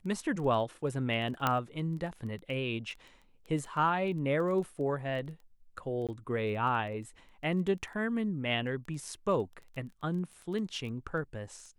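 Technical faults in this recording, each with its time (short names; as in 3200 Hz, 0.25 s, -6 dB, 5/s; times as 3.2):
crackle 10/s -38 dBFS
1.47 pop -13 dBFS
6.07–6.09 gap 17 ms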